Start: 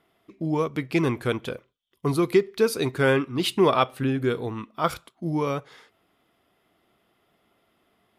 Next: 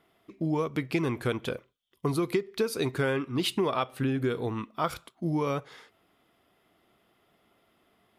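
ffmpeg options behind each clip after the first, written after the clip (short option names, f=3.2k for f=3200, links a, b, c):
-af "acompressor=threshold=-24dB:ratio=6"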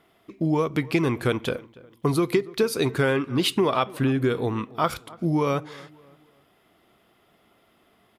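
-filter_complex "[0:a]asplit=2[a][b];[b]adelay=286,lowpass=f=2.1k:p=1,volume=-21dB,asplit=2[c][d];[d]adelay=286,lowpass=f=2.1k:p=1,volume=0.39,asplit=2[e][f];[f]adelay=286,lowpass=f=2.1k:p=1,volume=0.39[g];[a][c][e][g]amix=inputs=4:normalize=0,volume=5.5dB"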